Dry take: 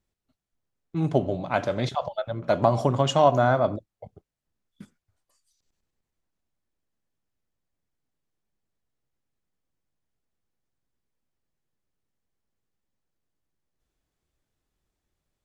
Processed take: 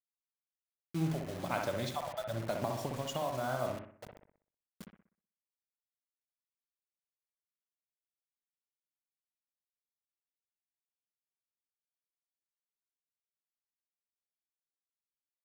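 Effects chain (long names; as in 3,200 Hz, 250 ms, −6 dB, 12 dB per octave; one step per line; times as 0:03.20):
high-shelf EQ 3,600 Hz +9 dB
downward compressor 8 to 1, threshold −25 dBFS, peak gain reduction 13 dB
sample-and-hold tremolo
bit reduction 7 bits
bucket-brigade delay 62 ms, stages 1,024, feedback 42%, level −4.5 dB
level −5 dB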